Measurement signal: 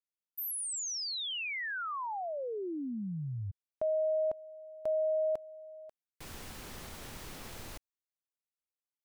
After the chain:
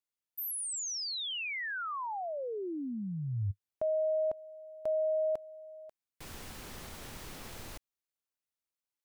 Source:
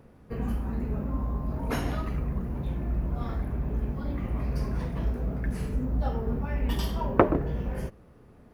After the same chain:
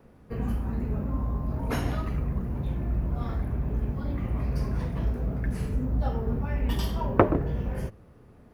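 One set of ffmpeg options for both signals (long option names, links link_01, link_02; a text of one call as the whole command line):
ffmpeg -i in.wav -af "adynamicequalizer=threshold=0.00447:dfrequency=100:dqfactor=2.2:tfrequency=100:tqfactor=2.2:attack=5:release=100:ratio=0.375:range=3:mode=boostabove:tftype=bell" out.wav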